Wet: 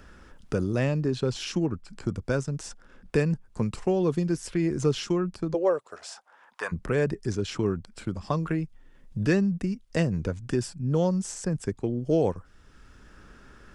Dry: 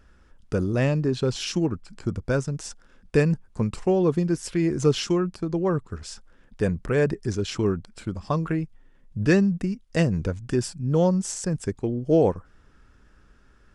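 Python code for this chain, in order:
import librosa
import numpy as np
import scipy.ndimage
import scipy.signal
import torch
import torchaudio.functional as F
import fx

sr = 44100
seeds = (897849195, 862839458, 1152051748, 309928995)

y = fx.highpass_res(x, sr, hz=fx.line((5.53, 470.0), (6.71, 1100.0)), q=4.0, at=(5.53, 6.71), fade=0.02)
y = fx.band_squash(y, sr, depth_pct=40)
y = y * 10.0 ** (-3.0 / 20.0)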